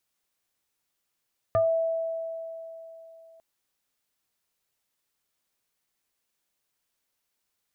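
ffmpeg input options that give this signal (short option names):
-f lavfi -i "aevalsrc='0.119*pow(10,-3*t/3.39)*sin(2*PI*656*t+0.93*pow(10,-3*t/0.21)*sin(2*PI*0.84*656*t))':d=1.85:s=44100"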